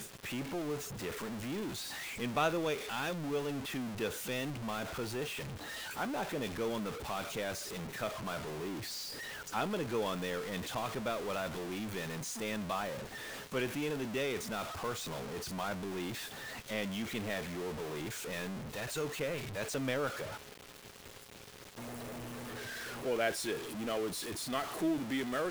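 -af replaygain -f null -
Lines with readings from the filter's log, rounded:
track_gain = +18.3 dB
track_peak = 0.075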